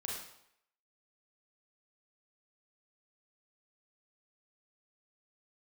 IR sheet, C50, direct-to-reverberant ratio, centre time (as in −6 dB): 0.5 dB, −3.0 dB, 56 ms